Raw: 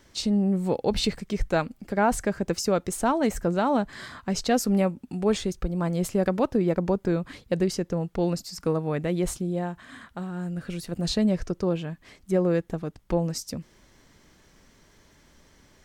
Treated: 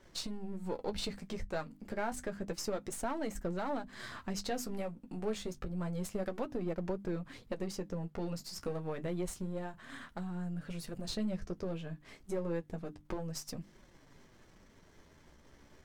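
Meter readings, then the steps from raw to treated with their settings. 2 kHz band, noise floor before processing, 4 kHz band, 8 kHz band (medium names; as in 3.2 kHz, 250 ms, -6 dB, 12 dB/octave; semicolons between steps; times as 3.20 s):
-11.0 dB, -59 dBFS, -10.5 dB, -10.5 dB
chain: partial rectifier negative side -7 dB; hum notches 50/100/150/200/250/300 Hz; compression 2:1, threshold -43 dBFS, peak gain reduction 13 dB; flange 0.29 Hz, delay 5.2 ms, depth 9.4 ms, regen -38%; tape noise reduction on one side only decoder only; trim +4.5 dB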